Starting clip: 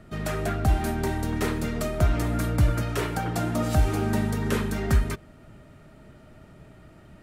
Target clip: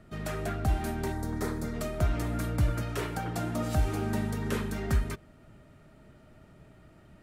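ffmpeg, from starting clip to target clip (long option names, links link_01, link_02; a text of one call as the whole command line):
ffmpeg -i in.wav -filter_complex "[0:a]asettb=1/sr,asplit=3[link_01][link_02][link_03];[link_01]atrim=end=1.124[link_04];[link_02]atrim=start=1.12:end=1.74,asetpts=PTS-STARTPTS,afade=type=in:duration=0.004:curve=qsin,afade=type=out:start_time=0.616:duration=0.004:curve=qsin,equalizer=frequency=2800:width=2.5:gain=-14[link_05];[link_03]atrim=start=1.736[link_06];[link_04][link_05]acrossfade=duration=0.004:curve1=hsin:curve2=qsin[link_07];[link_07][link_06]acrossfade=duration=0.004:curve1=qsin:curve2=hsin,volume=-5.5dB" out.wav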